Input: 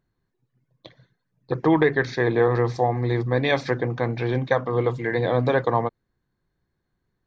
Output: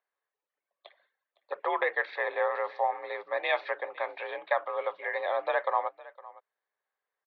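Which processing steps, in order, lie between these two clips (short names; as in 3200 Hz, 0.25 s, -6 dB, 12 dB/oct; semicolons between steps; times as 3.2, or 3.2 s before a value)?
mistuned SSB +54 Hz 530–3500 Hz; echo 0.51 s -20 dB; gain -4 dB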